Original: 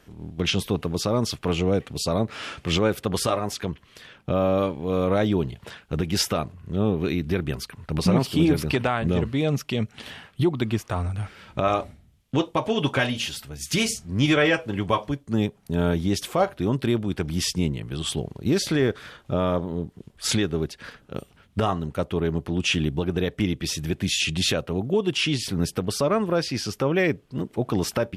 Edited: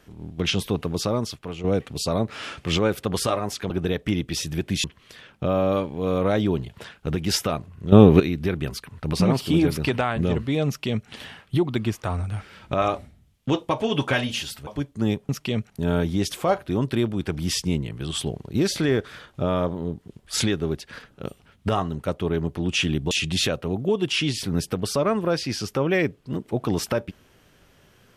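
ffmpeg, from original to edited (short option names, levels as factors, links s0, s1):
-filter_complex "[0:a]asplit=10[s0][s1][s2][s3][s4][s5][s6][s7][s8][s9];[s0]atrim=end=1.64,asetpts=PTS-STARTPTS,afade=t=out:st=1.09:d=0.55:c=qua:silence=0.298538[s10];[s1]atrim=start=1.64:end=3.702,asetpts=PTS-STARTPTS,afade=t=in:d=0.004:c=hsin:silence=0.298538[s11];[s2]atrim=start=23.018:end=24.162[s12];[s3]atrim=start=3.698:end=6.782[s13];[s4]atrim=start=6.778:end=7.062,asetpts=PTS-STARTPTS,volume=3.76[s14];[s5]atrim=start=7.058:end=13.532[s15];[s6]atrim=start=14.988:end=15.612[s16];[s7]atrim=start=9.528:end=9.942[s17];[s8]atrim=start=15.608:end=23.022[s18];[s9]atrim=start=24.158[s19];[s10][s11]concat=n=2:v=0:a=1[s20];[s20][s12]acrossfade=d=0.004:c1=hsin:c2=hsin[s21];[s21][s13]acrossfade=d=0.004:c1=hsin:c2=hsin[s22];[s22][s14]acrossfade=d=0.004:c1=hsin:c2=hsin[s23];[s23][s15]acrossfade=d=0.004:c1=hsin:c2=hsin[s24];[s24][s16]acrossfade=d=0.004:c1=hsin:c2=hsin[s25];[s25][s17]acrossfade=d=0.004:c1=hsin:c2=hsin[s26];[s26][s18]acrossfade=d=0.004:c1=hsin:c2=hsin[s27];[s27][s19]acrossfade=d=0.004:c1=hsin:c2=hsin"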